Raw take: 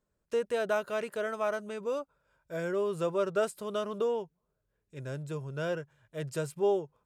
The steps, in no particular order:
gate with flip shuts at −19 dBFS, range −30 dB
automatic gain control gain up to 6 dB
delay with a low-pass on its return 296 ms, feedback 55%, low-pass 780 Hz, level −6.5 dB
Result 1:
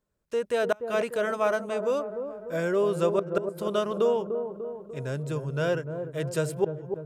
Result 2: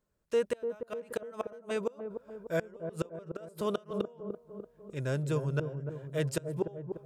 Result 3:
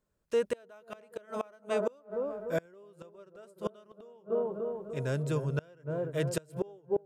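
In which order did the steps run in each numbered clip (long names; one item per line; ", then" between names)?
gate with flip, then automatic gain control, then delay with a low-pass on its return
automatic gain control, then gate with flip, then delay with a low-pass on its return
automatic gain control, then delay with a low-pass on its return, then gate with flip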